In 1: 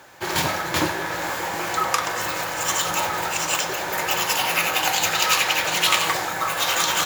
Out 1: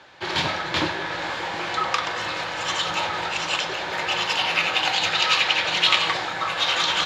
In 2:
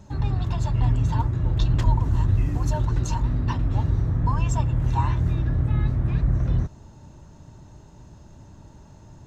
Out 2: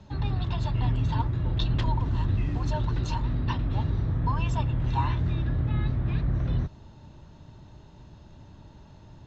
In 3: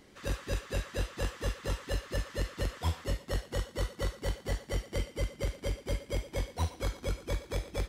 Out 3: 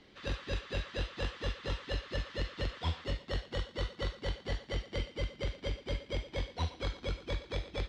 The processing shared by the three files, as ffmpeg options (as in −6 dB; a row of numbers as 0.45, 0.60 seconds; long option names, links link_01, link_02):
-filter_complex "[0:a]lowpass=frequency=3800:width_type=q:width=1.9,acrossover=split=130[link_01][link_02];[link_01]asoftclip=type=tanh:threshold=-20dB[link_03];[link_03][link_02]amix=inputs=2:normalize=0,volume=-2.5dB"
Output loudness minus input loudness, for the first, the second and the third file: −1.0, −4.0, −2.0 LU